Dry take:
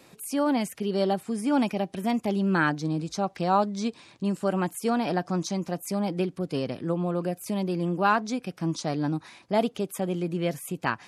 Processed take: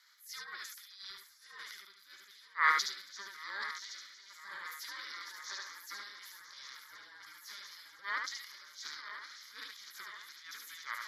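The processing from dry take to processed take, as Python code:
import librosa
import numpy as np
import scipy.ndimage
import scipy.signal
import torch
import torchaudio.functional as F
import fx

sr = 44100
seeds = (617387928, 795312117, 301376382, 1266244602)

y = fx.reverse_delay_fb(x, sr, ms=505, feedback_pct=73, wet_db=-12.5)
y = scipy.signal.sosfilt(scipy.signal.butter(6, 1300.0, 'highpass', fs=sr, output='sos'), y)
y = fx.transient(y, sr, attack_db=-10, sustain_db=9)
y = y * np.sin(2.0 * np.pi * 400.0 * np.arange(len(y)) / sr)
y = fx.fixed_phaser(y, sr, hz=2700.0, stages=6)
y = y + 10.0 ** (-4.0 / 20.0) * np.pad(y, (int(73 * sr / 1000.0), 0))[:len(y)]
y = fx.band_widen(y, sr, depth_pct=100, at=(0.44, 3.07))
y = F.gain(torch.from_numpy(y), -1.0).numpy()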